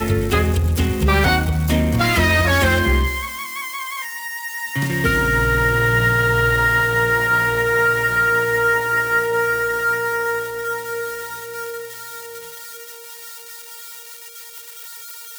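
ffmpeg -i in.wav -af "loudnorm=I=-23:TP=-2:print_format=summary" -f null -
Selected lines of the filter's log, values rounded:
Input Integrated:    -18.1 LUFS
Input True Peak:      -5.3 dBTP
Input LRA:            17.5 LU
Input Threshold:     -29.9 LUFS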